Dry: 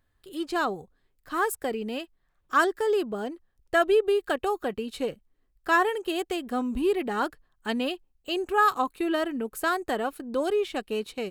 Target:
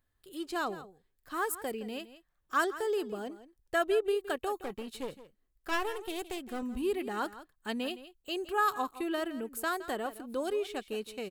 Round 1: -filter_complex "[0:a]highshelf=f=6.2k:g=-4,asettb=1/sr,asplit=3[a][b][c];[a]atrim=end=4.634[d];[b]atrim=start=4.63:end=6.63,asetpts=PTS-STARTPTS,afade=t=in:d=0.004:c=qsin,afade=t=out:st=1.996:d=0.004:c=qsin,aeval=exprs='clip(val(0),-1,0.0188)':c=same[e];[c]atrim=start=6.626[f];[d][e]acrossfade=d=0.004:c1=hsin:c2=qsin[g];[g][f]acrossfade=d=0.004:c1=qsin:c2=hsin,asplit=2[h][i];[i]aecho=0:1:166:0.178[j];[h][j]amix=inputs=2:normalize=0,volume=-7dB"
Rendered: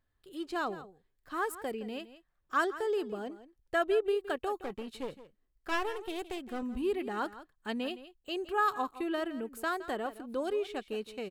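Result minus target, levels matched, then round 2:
8000 Hz band -6.5 dB
-filter_complex "[0:a]highshelf=f=6.2k:g=6.5,asettb=1/sr,asplit=3[a][b][c];[a]atrim=end=4.634[d];[b]atrim=start=4.63:end=6.63,asetpts=PTS-STARTPTS,afade=t=in:d=0.004:c=qsin,afade=t=out:st=1.996:d=0.004:c=qsin,aeval=exprs='clip(val(0),-1,0.0188)':c=same[e];[c]atrim=start=6.626[f];[d][e]acrossfade=d=0.004:c1=hsin:c2=qsin[g];[g][f]acrossfade=d=0.004:c1=qsin:c2=hsin,asplit=2[h][i];[i]aecho=0:1:166:0.178[j];[h][j]amix=inputs=2:normalize=0,volume=-7dB"

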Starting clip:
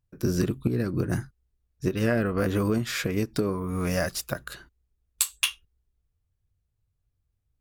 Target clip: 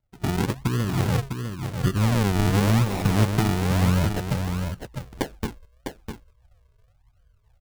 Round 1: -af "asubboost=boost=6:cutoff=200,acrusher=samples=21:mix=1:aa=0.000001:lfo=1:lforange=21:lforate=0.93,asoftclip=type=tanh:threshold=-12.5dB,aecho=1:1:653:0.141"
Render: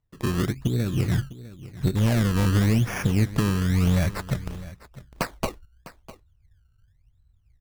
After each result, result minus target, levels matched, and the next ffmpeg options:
echo-to-direct -10.5 dB; decimation with a swept rate: distortion -7 dB
-af "asubboost=boost=6:cutoff=200,acrusher=samples=21:mix=1:aa=0.000001:lfo=1:lforange=21:lforate=0.93,asoftclip=type=tanh:threshold=-12.5dB,aecho=1:1:653:0.473"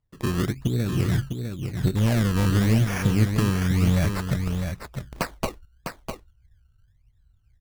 decimation with a swept rate: distortion -7 dB
-af "asubboost=boost=6:cutoff=200,acrusher=samples=56:mix=1:aa=0.000001:lfo=1:lforange=56:lforate=0.93,asoftclip=type=tanh:threshold=-12.5dB,aecho=1:1:653:0.473"

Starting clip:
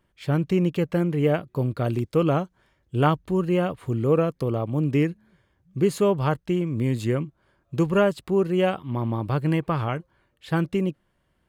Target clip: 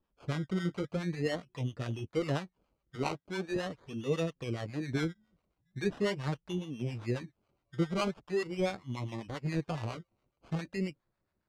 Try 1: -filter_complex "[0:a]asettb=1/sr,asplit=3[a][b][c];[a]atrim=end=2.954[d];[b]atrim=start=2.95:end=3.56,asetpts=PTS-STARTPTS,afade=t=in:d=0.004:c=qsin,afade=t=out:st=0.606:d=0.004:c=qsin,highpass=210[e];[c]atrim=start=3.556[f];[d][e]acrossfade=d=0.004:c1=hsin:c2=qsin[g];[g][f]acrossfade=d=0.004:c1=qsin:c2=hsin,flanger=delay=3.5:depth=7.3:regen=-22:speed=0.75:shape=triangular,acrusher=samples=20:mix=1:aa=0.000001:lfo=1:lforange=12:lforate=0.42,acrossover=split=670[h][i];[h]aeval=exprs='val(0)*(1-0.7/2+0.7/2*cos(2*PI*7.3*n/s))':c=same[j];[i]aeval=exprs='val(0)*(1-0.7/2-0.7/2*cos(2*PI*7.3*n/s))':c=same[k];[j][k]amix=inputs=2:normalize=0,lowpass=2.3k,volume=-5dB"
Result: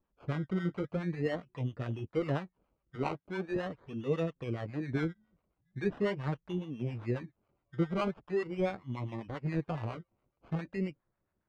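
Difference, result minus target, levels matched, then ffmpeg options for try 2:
4000 Hz band -7.0 dB
-filter_complex "[0:a]asettb=1/sr,asplit=3[a][b][c];[a]atrim=end=2.954[d];[b]atrim=start=2.95:end=3.56,asetpts=PTS-STARTPTS,afade=t=in:d=0.004:c=qsin,afade=t=out:st=0.606:d=0.004:c=qsin,highpass=210[e];[c]atrim=start=3.556[f];[d][e]acrossfade=d=0.004:c1=hsin:c2=qsin[g];[g][f]acrossfade=d=0.004:c1=qsin:c2=hsin,flanger=delay=3.5:depth=7.3:regen=-22:speed=0.75:shape=triangular,acrusher=samples=20:mix=1:aa=0.000001:lfo=1:lforange=12:lforate=0.42,acrossover=split=670[h][i];[h]aeval=exprs='val(0)*(1-0.7/2+0.7/2*cos(2*PI*7.3*n/s))':c=same[j];[i]aeval=exprs='val(0)*(1-0.7/2-0.7/2*cos(2*PI*7.3*n/s))':c=same[k];[j][k]amix=inputs=2:normalize=0,lowpass=5.2k,volume=-5dB"

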